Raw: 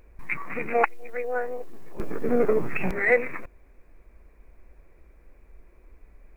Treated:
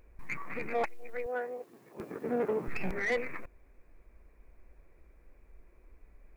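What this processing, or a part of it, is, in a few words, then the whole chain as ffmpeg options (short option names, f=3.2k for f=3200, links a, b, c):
saturation between pre-emphasis and de-emphasis: -filter_complex "[0:a]highshelf=f=2.1k:g=11.5,asoftclip=type=tanh:threshold=-17dB,highshelf=f=2.1k:g=-11.5,asettb=1/sr,asplit=3[a][b][c];[a]atrim=end=1.264[d];[b]atrim=start=1.26:end=2.68,asetpts=PTS-STARTPTS,afade=t=in:d=0.004:c=qsin,afade=t=out:st=1.416:d=0.004:c=qsin,highpass=130[e];[c]atrim=start=2.676[f];[d][e]acrossfade=d=0.004:c1=hsin:c2=qsin[g];[g][f]acrossfade=d=0.004:c1=qsin:c2=hsin,volume=-5.5dB"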